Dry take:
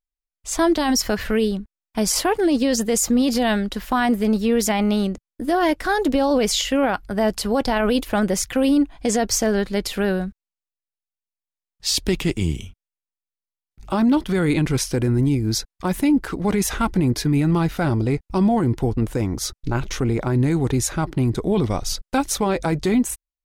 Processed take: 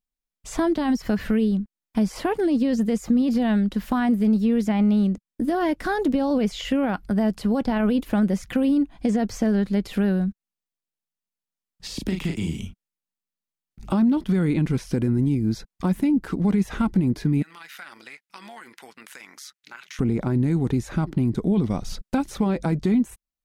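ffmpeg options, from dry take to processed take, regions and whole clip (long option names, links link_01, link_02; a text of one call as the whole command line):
ffmpeg -i in.wav -filter_complex "[0:a]asettb=1/sr,asplit=3[link_01][link_02][link_03];[link_01]atrim=end=11.874[link_04];[link_02]atrim=start=11.87:end=12.6,asetpts=PTS-STARTPTS,afade=type=in:duration=0.004:curve=qsin,afade=type=out:start_time=0.726:duration=0.004:curve=qsin,acrossover=split=170|600[link_05][link_06][link_07];[link_05]acompressor=threshold=-34dB:ratio=4[link_08];[link_06]acompressor=threshold=-34dB:ratio=4[link_09];[link_07]acompressor=threshold=-28dB:ratio=4[link_10];[link_08][link_09][link_10]amix=inputs=3:normalize=0,asplit=2[link_11][link_12];[link_12]adelay=37,volume=-5dB[link_13];[link_11][link_13]amix=inputs=2:normalize=0,atrim=end_sample=32193[link_14];[link_03]atrim=start=12.596[link_15];[link_04][link_14]acrossfade=duration=0.004:curve1=hsin:curve2=qsin[link_16];[link_16][link_15]acrossfade=duration=0.004:curve1=qsin:curve2=hsin,asettb=1/sr,asplit=3[link_17][link_18][link_19];[link_17]atrim=end=17.424[link_20];[link_18]atrim=start=17.42:end=19.99,asetpts=PTS-STARTPTS,afade=type=in:duration=0.004:curve=qsin,afade=type=out:start_time=2.566:duration=0.004:curve=qsin,tremolo=f=140:d=0.519,highpass=frequency=1800:width_type=q:width=1.7,acompressor=threshold=-39dB:ratio=3:attack=3.2:release=140:knee=1:detection=peak[link_21];[link_19]atrim=start=19.986[link_22];[link_20][link_21]acrossfade=duration=0.004:curve1=hsin:curve2=qsin[link_23];[link_23][link_22]acrossfade=duration=0.004:curve1=qsin:curve2=hsin,acrossover=split=2900[link_24][link_25];[link_25]acompressor=threshold=-36dB:ratio=4:attack=1:release=60[link_26];[link_24][link_26]amix=inputs=2:normalize=0,equalizer=frequency=200:width=1.3:gain=11,acompressor=threshold=-25dB:ratio=2" out.wav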